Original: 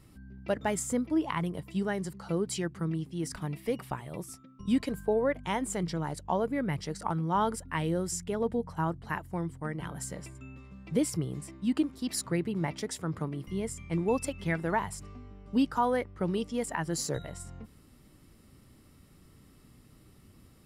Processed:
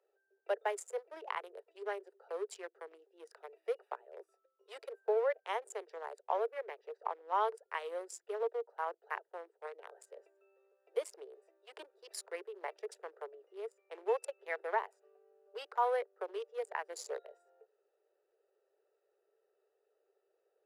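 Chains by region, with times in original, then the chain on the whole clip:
6.67–7.33 bell 8600 Hz -13.5 dB 1.1 oct + notch 1400 Hz, Q 6.7
whole clip: Wiener smoothing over 41 samples; steep high-pass 400 Hz 96 dB/oct; high shelf 3800 Hz -7 dB; gain -2.5 dB

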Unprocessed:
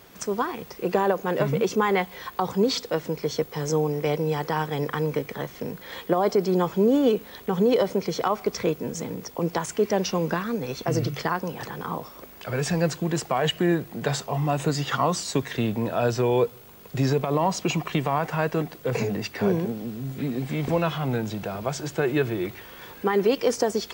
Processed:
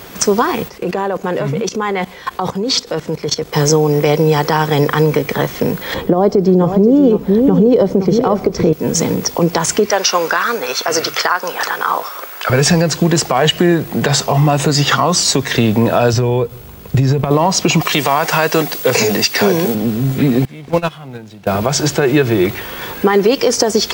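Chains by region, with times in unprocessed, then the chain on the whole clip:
0.68–3.53 level quantiser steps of 17 dB + LPF 11000 Hz
5.94–8.73 tilt shelf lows +9.5 dB, about 810 Hz + echo 0.513 s -10.5 dB
9.9–12.5 HPF 630 Hz + bell 1400 Hz +7 dB 0.55 oct
16.13–17.31 compressor, threshold -31 dBFS + gate -40 dBFS, range -7 dB + bell 65 Hz +13.5 dB 2.6 oct
17.81–19.75 HPF 360 Hz 6 dB/oct + high shelf 3100 Hz +9 dB
20.45–21.47 median filter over 5 samples + gate -22 dBFS, range -22 dB + bell 6000 Hz +6 dB 2.2 oct
whole clip: dynamic EQ 5300 Hz, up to +5 dB, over -48 dBFS, Q 1.6; compressor, threshold -24 dBFS; maximiser +17.5 dB; gain -1 dB

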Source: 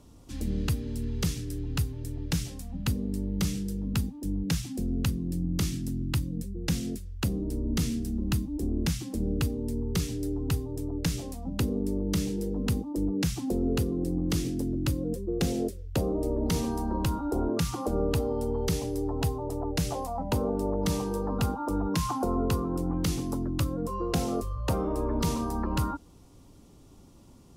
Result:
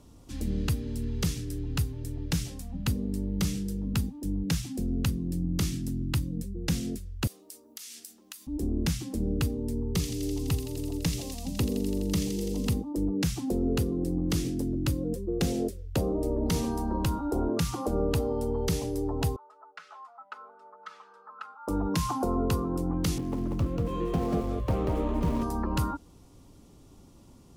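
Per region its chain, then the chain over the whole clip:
7.27–8.47 HPF 1200 Hz + high shelf 3300 Hz +9.5 dB + compressor 12:1, threshold -39 dBFS
9.87–12.74 bell 1500 Hz -9 dB 0.26 oct + thin delay 84 ms, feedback 84%, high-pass 2900 Hz, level -7.5 dB
19.36–21.68 ladder band-pass 1400 Hz, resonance 80% + comb 4.7 ms, depth 85%
23.18–25.43 median filter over 25 samples + echo 0.188 s -3.5 dB
whole clip: dry

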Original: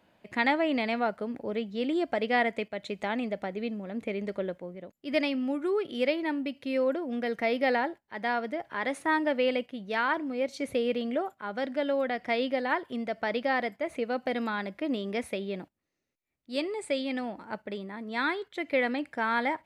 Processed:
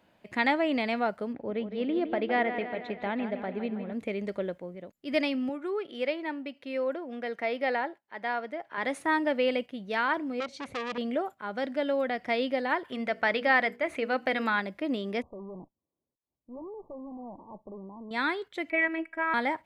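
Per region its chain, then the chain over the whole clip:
1.33–3.93 air absorption 250 m + dark delay 0.161 s, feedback 60%, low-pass 3500 Hz, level -9.5 dB
5.49–8.78 HPF 490 Hz 6 dB/oct + high shelf 4300 Hz -10.5 dB
10.4–10.98 air absorption 65 m + core saturation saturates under 2400 Hz
12.84–14.6 bell 1800 Hz +7.5 dB 1.9 oct + notches 60/120/180/240/300/360/420/480 Hz
15.22–18.11 tube stage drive 39 dB, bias 0.6 + brick-wall FIR low-pass 1200 Hz
18.7–19.34 resonant high shelf 3100 Hz -10 dB, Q 3 + robotiser 325 Hz
whole clip: dry

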